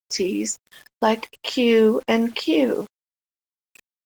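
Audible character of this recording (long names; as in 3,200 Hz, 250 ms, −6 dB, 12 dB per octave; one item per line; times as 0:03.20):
a quantiser's noise floor 8 bits, dither none
Opus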